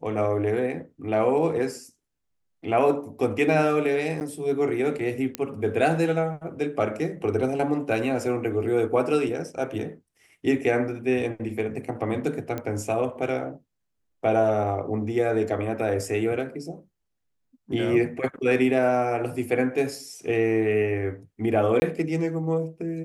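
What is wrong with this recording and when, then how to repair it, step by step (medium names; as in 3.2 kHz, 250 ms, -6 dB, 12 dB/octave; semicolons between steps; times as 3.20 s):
4.20–4.21 s: dropout 9.5 ms
5.35 s: pop -11 dBFS
12.58 s: pop -17 dBFS
21.80–21.82 s: dropout 20 ms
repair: de-click; interpolate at 4.20 s, 9.5 ms; interpolate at 21.80 s, 20 ms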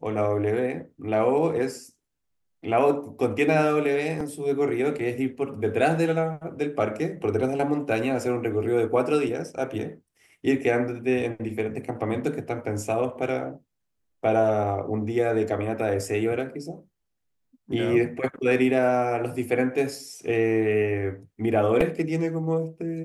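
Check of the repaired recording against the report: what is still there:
nothing left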